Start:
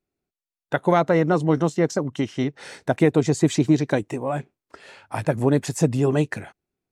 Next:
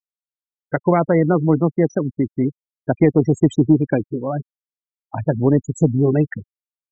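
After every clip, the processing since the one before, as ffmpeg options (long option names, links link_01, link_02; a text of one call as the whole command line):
ffmpeg -i in.wav -filter_complex "[0:a]afftfilt=real='re*gte(hypot(re,im),0.0891)':imag='im*gte(hypot(re,im),0.0891)':win_size=1024:overlap=0.75,lowshelf=frequency=150:gain=-3.5,acrossover=split=400[link_01][link_02];[link_01]acontrast=74[link_03];[link_03][link_02]amix=inputs=2:normalize=0" out.wav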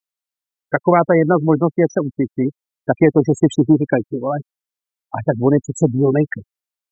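ffmpeg -i in.wav -af "lowshelf=frequency=340:gain=-8.5,volume=6dB" out.wav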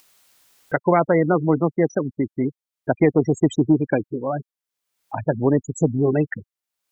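ffmpeg -i in.wav -af "acompressor=mode=upward:threshold=-26dB:ratio=2.5,volume=-4dB" out.wav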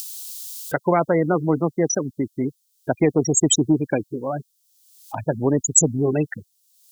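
ffmpeg -i in.wav -af "aexciter=amount=13.8:drive=4.2:freq=3100,volume=-1.5dB" out.wav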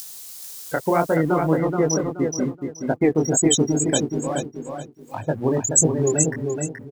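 ffmpeg -i in.wav -af "aeval=exprs='sgn(val(0))*max(abs(val(0))-0.00596,0)':channel_layout=same,flanger=delay=19:depth=6.8:speed=1.7,aecho=1:1:426|852|1278|1704:0.562|0.152|0.041|0.0111,volume=2.5dB" out.wav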